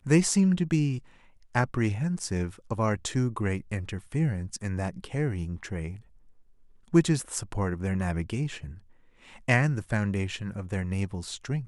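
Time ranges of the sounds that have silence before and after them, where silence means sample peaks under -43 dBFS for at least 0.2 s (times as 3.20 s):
1.55–6.00 s
6.88–8.78 s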